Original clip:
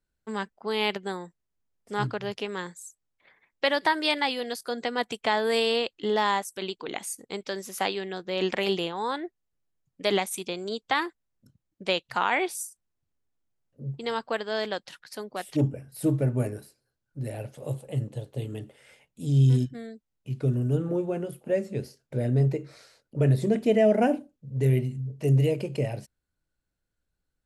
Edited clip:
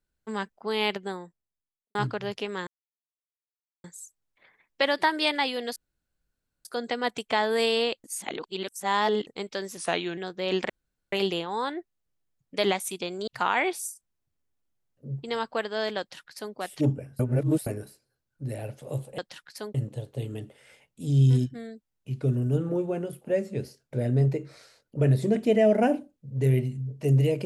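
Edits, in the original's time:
0:00.87–0:01.95: fade out and dull
0:02.67: splice in silence 1.17 s
0:04.59: splice in room tone 0.89 s
0:05.98–0:07.21: reverse
0:07.71–0:08.07: play speed 89%
0:08.59: splice in room tone 0.43 s
0:10.74–0:12.03: remove
0:14.75–0:15.31: duplicate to 0:17.94
0:15.95–0:16.42: reverse

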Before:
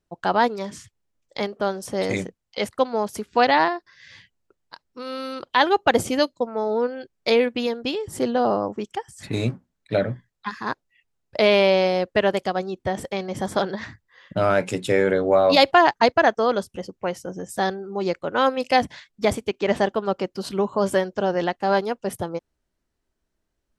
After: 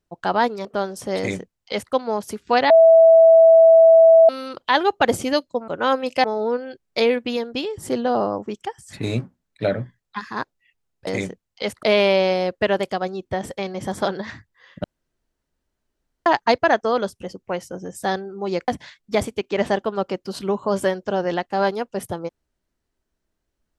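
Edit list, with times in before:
0:00.65–0:01.51: remove
0:02.03–0:02.79: duplicate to 0:11.37
0:03.56–0:05.15: beep over 655 Hz −7 dBFS
0:14.38–0:15.80: fill with room tone
0:18.22–0:18.78: move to 0:06.54

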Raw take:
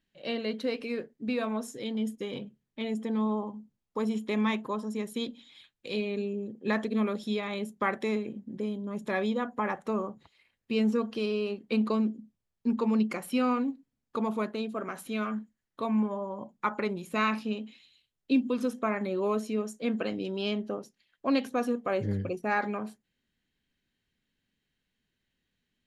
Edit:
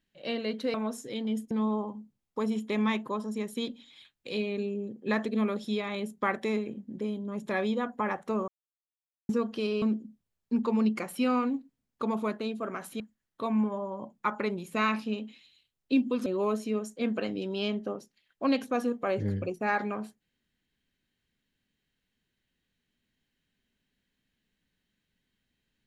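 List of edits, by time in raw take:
0:00.74–0:01.44: remove
0:02.21–0:03.10: remove
0:10.07–0:10.88: silence
0:11.41–0:11.96: remove
0:15.14–0:15.39: remove
0:18.65–0:19.09: remove

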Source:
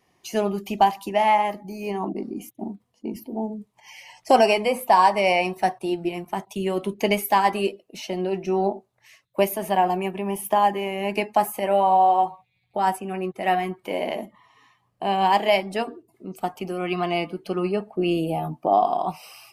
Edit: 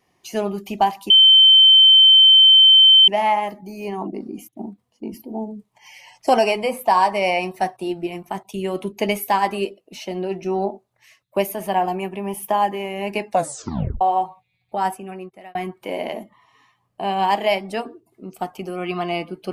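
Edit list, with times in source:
0:01.10: insert tone 3,090 Hz −7 dBFS 1.98 s
0:11.30: tape stop 0.73 s
0:12.87–0:13.57: fade out

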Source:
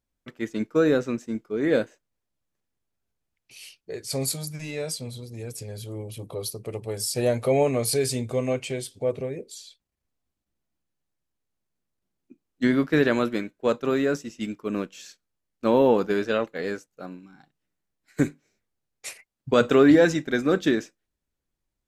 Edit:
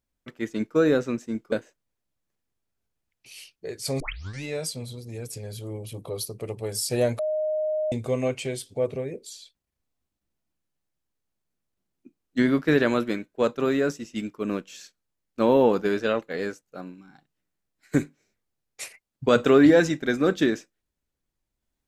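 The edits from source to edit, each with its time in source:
0:01.52–0:01.77: remove
0:04.25: tape start 0.43 s
0:07.44–0:08.17: beep over 618 Hz −23 dBFS

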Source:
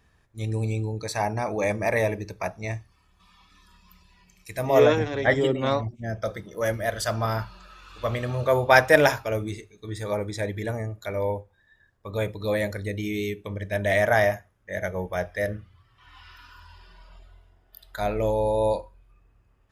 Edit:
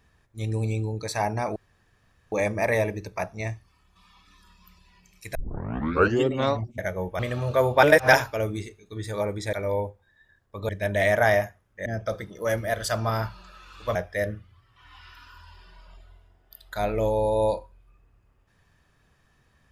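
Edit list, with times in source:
0:01.56: splice in room tone 0.76 s
0:04.59: tape start 0.91 s
0:06.02–0:08.11: swap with 0:14.76–0:15.17
0:08.75–0:09.05: reverse
0:10.45–0:11.04: remove
0:12.20–0:13.59: remove

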